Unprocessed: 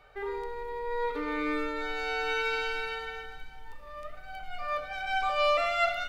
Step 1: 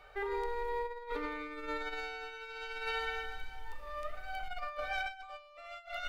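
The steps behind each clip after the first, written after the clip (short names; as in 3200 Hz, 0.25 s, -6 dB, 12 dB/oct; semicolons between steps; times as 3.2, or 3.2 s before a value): bell 170 Hz -9 dB 1.4 oct; negative-ratio compressor -36 dBFS, ratio -0.5; gain -2.5 dB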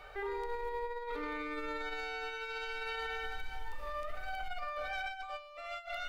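limiter -36 dBFS, peak gain reduction 11 dB; gain +5 dB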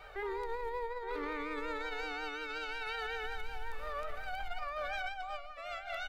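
outdoor echo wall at 150 m, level -9 dB; vibrato 5.5 Hz 61 cents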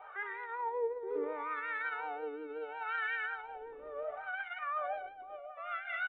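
wah 0.72 Hz 350–1800 Hz, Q 3.2; downsampling 8000 Hz; gain +8.5 dB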